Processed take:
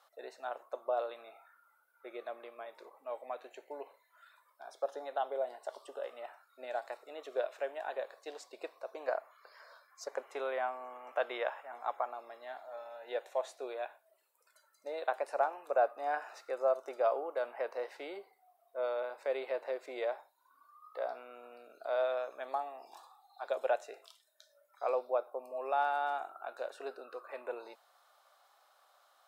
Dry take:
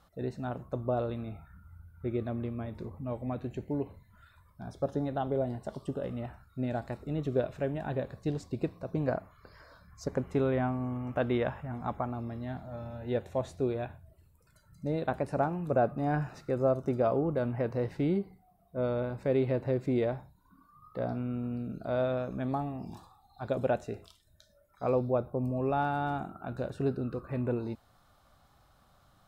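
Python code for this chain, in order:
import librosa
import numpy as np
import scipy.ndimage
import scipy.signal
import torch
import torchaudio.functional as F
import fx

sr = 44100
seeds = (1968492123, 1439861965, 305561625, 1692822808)

y = scipy.signal.sosfilt(scipy.signal.cheby2(4, 60, 160.0, 'highpass', fs=sr, output='sos'), x)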